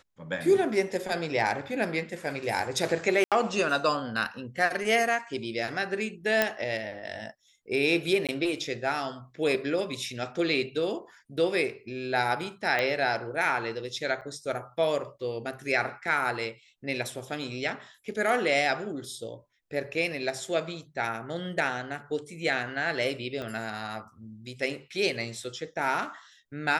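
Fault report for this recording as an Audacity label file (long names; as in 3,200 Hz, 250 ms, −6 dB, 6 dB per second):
3.240000	3.320000	drop-out 77 ms
6.420000	6.420000	click −8 dBFS
8.270000	8.290000	drop-out 17 ms
12.790000	12.790000	click −14 dBFS
14.210000	14.220000	drop-out 7.3 ms
23.420000	23.420000	click −23 dBFS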